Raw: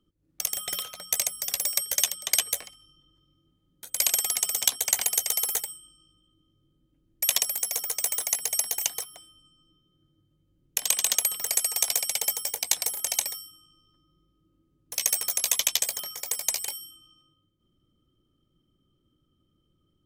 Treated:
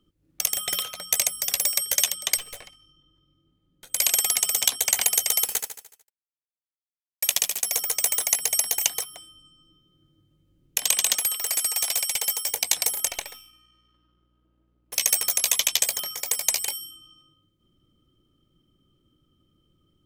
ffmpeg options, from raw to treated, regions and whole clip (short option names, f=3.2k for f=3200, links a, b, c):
-filter_complex "[0:a]asettb=1/sr,asplit=3[a][b][c];[a]atrim=end=2.374[d];[b]atrim=start=2.37:end=3.9,asetpts=PTS-STARTPTS,afade=t=in:d=0.004:c=qsin,afade=t=out:st=1.526:d=0.004:c=qsin,lowpass=f=3.9k:p=1,aeval=exprs='(tanh(79.4*val(0)+0.65)-tanh(0.65))/79.4':c=same[e];[c]atrim=start=3.896[f];[d][e]acrossfade=d=0.004:c1=hsin:c2=qsin[g];[g][f]acrossfade=d=0.004:c1=qsin:c2=hsin,asettb=1/sr,asplit=3[h][i][j];[h]atrim=end=5.444[k];[i]atrim=start=5.44:end=7.65,asetpts=PTS-STARTPTS,afade=t=in:d=0.004:c=qsin,afade=t=out:st=2.206:d=0.004:c=qsin,aeval=exprs='sgn(val(0))*max(abs(val(0))-0.0266,0)':c=same,aecho=1:1:74|148|222|296|370|444:0.376|0.199|0.106|0.056|0.0297|0.0157,atrim=end_sample=97461[l];[j]atrim=start=7.646[m];[k][l]acrossfade=d=0.004:c1=hsin:c2=qsin[n];[n][m]acrossfade=d=0.004:c1=qsin:c2=hsin,asettb=1/sr,asplit=3[o][p][q];[o]atrim=end=11.174[r];[p]atrim=start=11.17:end=12.48,asetpts=PTS-STARTPTS,afade=t=in:d=0.004:c=qsin,afade=t=out:st=1.306:d=0.004:c=qsin,highpass=f=580:p=1,volume=22.5dB,asoftclip=hard,volume=-22.5dB[s];[q]atrim=start=12.476[t];[r][s]acrossfade=d=0.004:c1=hsin:c2=qsin[u];[u][t]acrossfade=d=0.004:c1=qsin:c2=hsin,asettb=1/sr,asplit=3[v][w][x];[v]atrim=end=13.084[y];[w]atrim=start=13.08:end=14.93,asetpts=PTS-STARTPTS,afade=t=in:d=0.004:c=qsin,afade=t=out:st=1.846:d=0.004:c=qsin,aeval=exprs='if(lt(val(0),0),0.447*val(0),val(0))':c=same,bass=f=250:g=-15,treble=f=4k:g=-12,aeval=exprs='val(0)+0.000251*(sin(2*PI*60*n/s)+sin(2*PI*2*60*n/s)/2+sin(2*PI*3*60*n/s)/3+sin(2*PI*4*60*n/s)/4+sin(2*PI*5*60*n/s)/5)':c=same[z];[x]atrim=start=14.926[aa];[y][z]acrossfade=d=0.004:c1=hsin:c2=qsin[ab];[ab][aa]acrossfade=d=0.004:c1=qsin:c2=hsin,equalizer=f=2.6k:w=1.5:g=2.5,alimiter=level_in=6.5dB:limit=-1dB:release=50:level=0:latency=1,volume=-2.5dB"